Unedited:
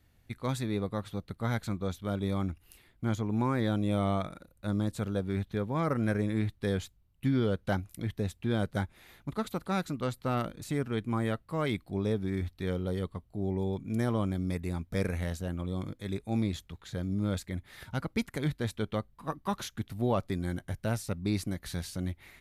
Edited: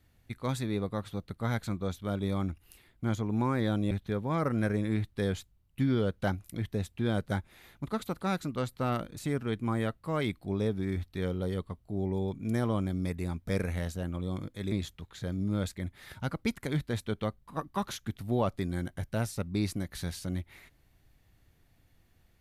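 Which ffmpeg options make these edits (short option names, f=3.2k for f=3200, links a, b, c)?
-filter_complex "[0:a]asplit=3[a][b][c];[a]atrim=end=3.912[d];[b]atrim=start=5.358:end=16.172[e];[c]atrim=start=16.428[f];[d][e]acrossfade=d=0.004:c1=hsin:c2=hsin[g];[g][f]acrossfade=d=0.004:c1=hsin:c2=hsin"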